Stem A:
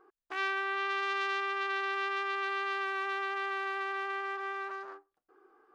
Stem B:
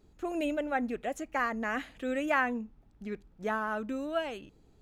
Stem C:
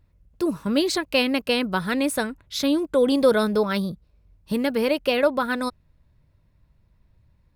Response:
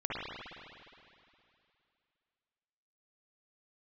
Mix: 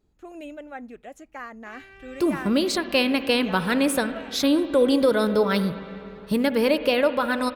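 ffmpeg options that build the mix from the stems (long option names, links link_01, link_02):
-filter_complex "[0:a]aecho=1:1:7.3:0.65,acompressor=threshold=-43dB:ratio=2.5,adelay=1350,volume=-6dB[link_01];[1:a]volume=-7dB[link_02];[2:a]alimiter=limit=-11.5dB:level=0:latency=1:release=427,adelay=1800,volume=0.5dB,asplit=2[link_03][link_04];[link_04]volume=-16dB[link_05];[3:a]atrim=start_sample=2205[link_06];[link_05][link_06]afir=irnorm=-1:irlink=0[link_07];[link_01][link_02][link_03][link_07]amix=inputs=4:normalize=0"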